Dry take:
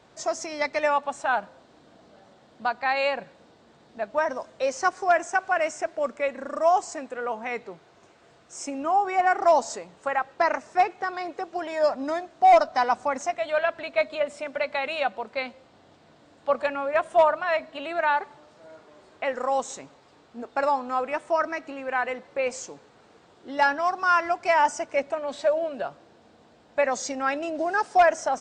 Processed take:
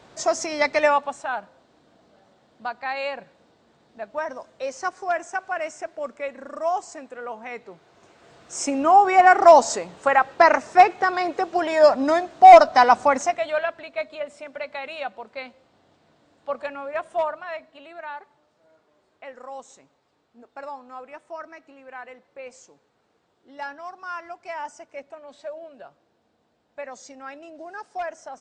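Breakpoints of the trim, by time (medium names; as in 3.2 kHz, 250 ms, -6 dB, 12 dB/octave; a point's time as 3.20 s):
0.84 s +5.5 dB
1.31 s -4 dB
7.59 s -4 dB
8.59 s +8 dB
13.10 s +8 dB
13.88 s -5 dB
17.10 s -5 dB
17.99 s -12.5 dB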